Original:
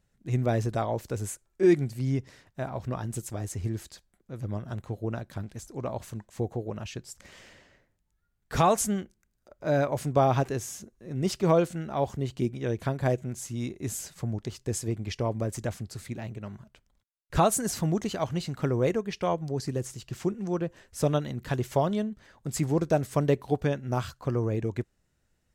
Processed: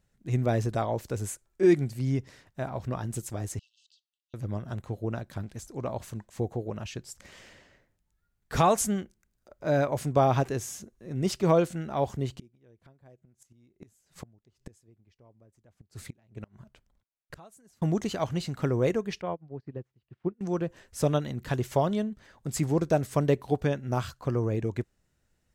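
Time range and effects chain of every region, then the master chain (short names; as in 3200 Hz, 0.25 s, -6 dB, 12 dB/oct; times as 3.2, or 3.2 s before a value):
3.59–4.34 brick-wall FIR band-pass 2600–9400 Hz + compressor 2.5:1, threshold -53 dBFS + air absorption 190 m
12.36–17.82 flipped gate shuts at -28 dBFS, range -29 dB + mismatched tape noise reduction decoder only
19.21–20.41 HPF 48 Hz + air absorption 390 m + upward expander 2.5:1, over -42 dBFS
whole clip: dry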